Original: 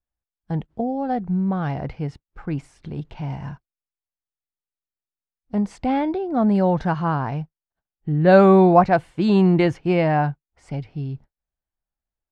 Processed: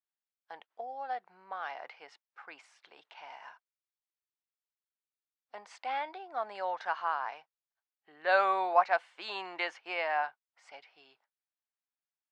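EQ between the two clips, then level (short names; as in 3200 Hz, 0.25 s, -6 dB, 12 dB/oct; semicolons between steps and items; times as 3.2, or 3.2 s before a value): Bessel high-pass 1100 Hz, order 4; air absorption 85 m; -2.5 dB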